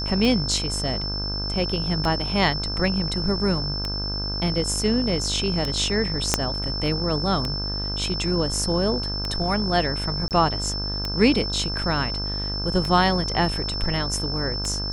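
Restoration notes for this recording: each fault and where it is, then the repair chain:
mains buzz 50 Hz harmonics 33 −30 dBFS
scratch tick 33 1/3 rpm −12 dBFS
whistle 5,300 Hz −28 dBFS
0:06.34: click −2 dBFS
0:10.28–0:10.31: drop-out 28 ms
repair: click removal
hum removal 50 Hz, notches 33
notch filter 5,300 Hz, Q 30
repair the gap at 0:10.28, 28 ms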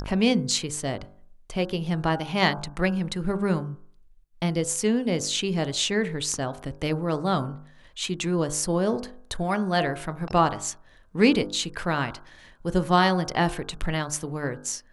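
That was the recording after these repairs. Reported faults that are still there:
0:06.34: click

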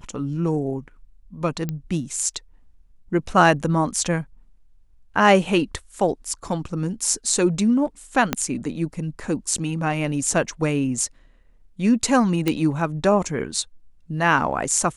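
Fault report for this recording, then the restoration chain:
0:01.69: click −14 dBFS
0:08.33: click −5 dBFS
0:12.48: click −8 dBFS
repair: click removal

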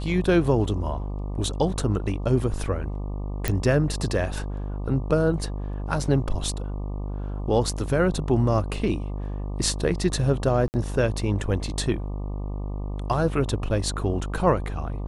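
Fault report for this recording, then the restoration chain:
mains buzz 50 Hz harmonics 24 −30 dBFS
0:03.48: click −8 dBFS
0:10.68–0:10.74: drop-out 59 ms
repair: click removal
hum removal 50 Hz, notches 24
repair the gap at 0:10.68, 59 ms

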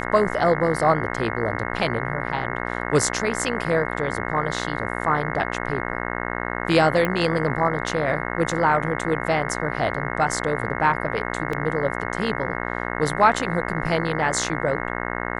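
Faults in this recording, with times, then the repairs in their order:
mains buzz 60 Hz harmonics 36 −28 dBFS
0:07.05: click −10 dBFS
0:11.53: drop-out 3.2 ms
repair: click removal
hum removal 60 Hz, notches 36
repair the gap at 0:11.53, 3.2 ms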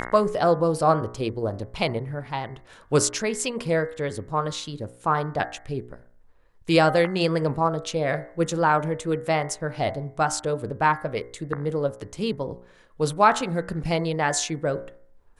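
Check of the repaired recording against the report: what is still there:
none of them is left

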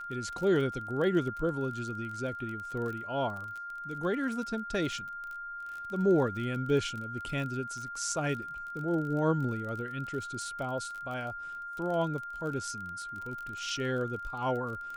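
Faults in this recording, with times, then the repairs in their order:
surface crackle 32 per second −37 dBFS
whistle 1,400 Hz −38 dBFS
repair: click removal
notch filter 1,400 Hz, Q 30

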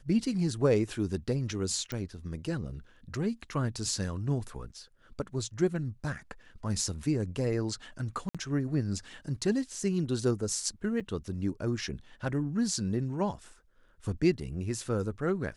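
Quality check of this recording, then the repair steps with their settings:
0:01.92: click −21 dBFS
0:08.29–0:08.35: drop-out 56 ms
0:11.00–0:11.01: drop-out 5.9 ms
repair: click removal
repair the gap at 0:08.29, 56 ms
repair the gap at 0:11.00, 5.9 ms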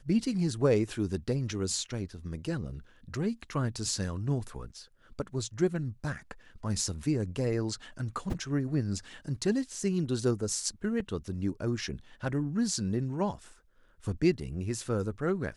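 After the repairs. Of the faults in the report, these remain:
none of them is left

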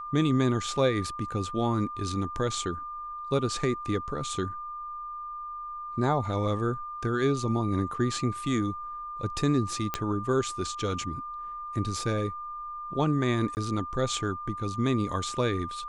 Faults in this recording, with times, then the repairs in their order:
whistle 1,200 Hz −35 dBFS
0:09.94: click −13 dBFS
0:13.55–0:13.57: drop-out 19 ms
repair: click removal
notch filter 1,200 Hz, Q 30
repair the gap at 0:13.55, 19 ms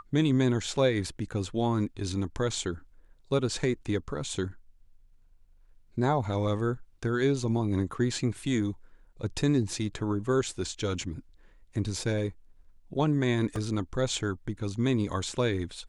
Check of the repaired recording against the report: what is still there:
none of them is left

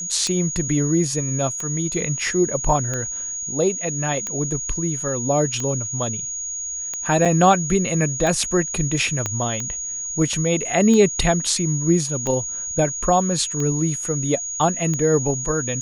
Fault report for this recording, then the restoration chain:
scratch tick 45 rpm −13 dBFS
whistle 6,700 Hz −26 dBFS
0:07.25–0:07.26: drop-out 5.7 ms
0:09.26: click −9 dBFS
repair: click removal
notch filter 6,700 Hz, Q 30
repair the gap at 0:07.25, 5.7 ms

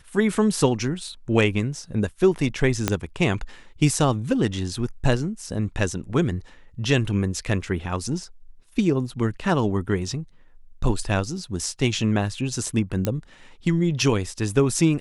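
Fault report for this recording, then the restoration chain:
0:02.88: click −5 dBFS
0:13.05: click −9 dBFS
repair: click removal

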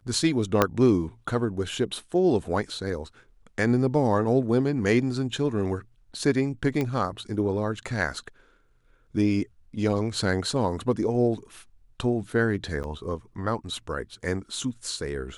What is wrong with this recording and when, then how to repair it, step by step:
0:00.62: click −5 dBFS
0:06.81: click −15 dBFS
0:12.83–0:12.84: drop-out 9.9 ms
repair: click removal
repair the gap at 0:12.83, 9.9 ms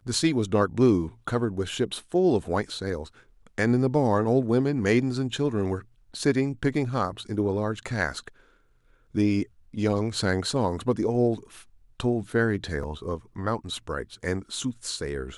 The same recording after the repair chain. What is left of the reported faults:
0:00.62: click

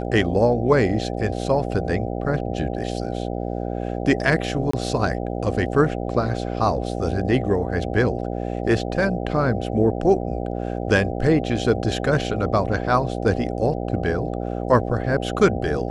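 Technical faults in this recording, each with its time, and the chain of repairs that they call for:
mains buzz 60 Hz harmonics 13 −27 dBFS
0:04.71–0:04.73: drop-out 24 ms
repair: hum removal 60 Hz, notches 13
repair the gap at 0:04.71, 24 ms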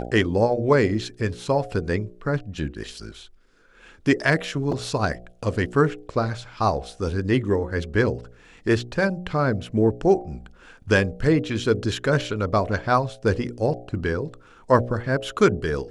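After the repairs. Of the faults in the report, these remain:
none of them is left

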